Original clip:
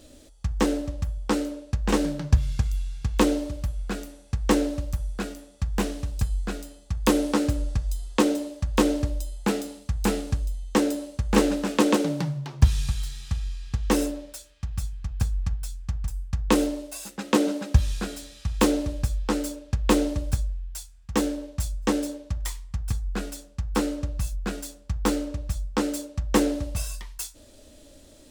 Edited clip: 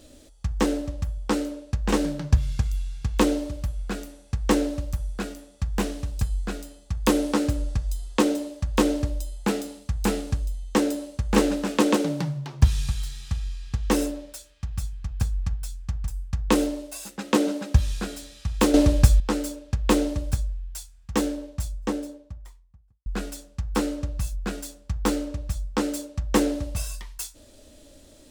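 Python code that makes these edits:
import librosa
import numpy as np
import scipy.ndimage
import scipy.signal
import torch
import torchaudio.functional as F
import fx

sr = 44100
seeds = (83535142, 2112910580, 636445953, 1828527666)

y = fx.studio_fade_out(x, sr, start_s=21.18, length_s=1.88)
y = fx.edit(y, sr, fx.clip_gain(start_s=18.74, length_s=0.46, db=10.5), tone=tone)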